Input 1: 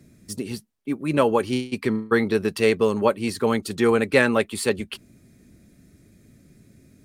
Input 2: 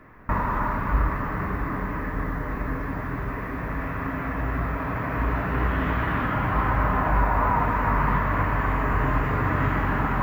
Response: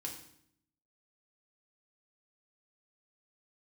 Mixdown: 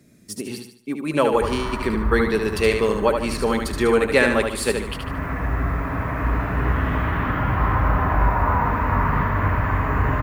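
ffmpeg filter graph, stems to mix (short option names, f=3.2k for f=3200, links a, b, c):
-filter_complex "[0:a]lowshelf=f=170:g=-8.5,volume=1dB,asplit=3[a][b][c];[b]volume=-5.5dB[d];[1:a]equalizer=f=75:w=1.5:g=7,adelay=1050,volume=0.5dB,asplit=2[e][f];[f]volume=-7.5dB[g];[c]apad=whole_len=497179[h];[e][h]sidechaincompress=threshold=-33dB:ratio=8:attack=5.5:release=328[i];[d][g]amix=inputs=2:normalize=0,aecho=0:1:74|148|222|296|370:1|0.39|0.152|0.0593|0.0231[j];[a][i][j]amix=inputs=3:normalize=0"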